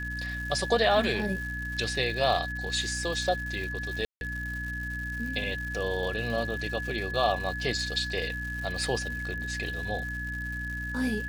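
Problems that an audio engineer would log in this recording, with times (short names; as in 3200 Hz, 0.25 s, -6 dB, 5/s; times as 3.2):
crackle 270/s -37 dBFS
hum 60 Hz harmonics 5 -37 dBFS
tone 1700 Hz -34 dBFS
4.05–4.21 gap 0.161 s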